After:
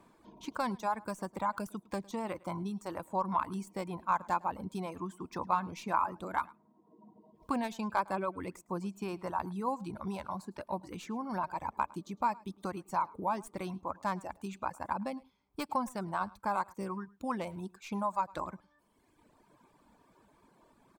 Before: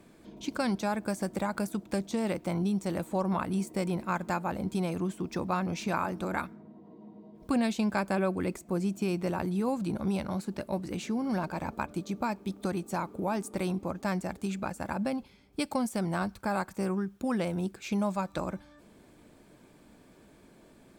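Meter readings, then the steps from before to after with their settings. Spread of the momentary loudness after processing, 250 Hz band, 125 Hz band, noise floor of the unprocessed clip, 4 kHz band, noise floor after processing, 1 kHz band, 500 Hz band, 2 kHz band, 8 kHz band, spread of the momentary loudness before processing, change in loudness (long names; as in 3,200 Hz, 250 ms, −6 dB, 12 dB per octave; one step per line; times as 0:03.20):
8 LU, −9.0 dB, −9.5 dB, −58 dBFS, −7.5 dB, −69 dBFS, +2.5 dB, −6.5 dB, −5.0 dB, −8.5 dB, 6 LU, −4.0 dB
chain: stylus tracing distortion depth 0.052 ms
parametric band 1,000 Hz +14 dB 0.64 octaves
reverb reduction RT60 1.4 s
single-tap delay 107 ms −23.5 dB
level −7 dB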